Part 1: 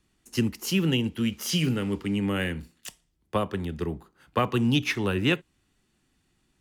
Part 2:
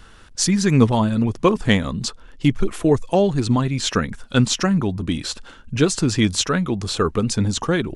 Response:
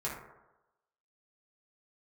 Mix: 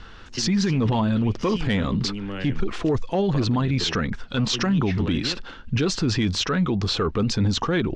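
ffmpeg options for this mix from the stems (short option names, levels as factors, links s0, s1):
-filter_complex "[0:a]acompressor=threshold=0.0282:ratio=6,volume=0.596[s0];[1:a]bandreject=f=600:w=17,volume=0.631[s1];[s0][s1]amix=inputs=2:normalize=0,lowpass=f=5300:w=0.5412,lowpass=f=5300:w=1.3066,acontrast=84,alimiter=limit=0.178:level=0:latency=1:release=25"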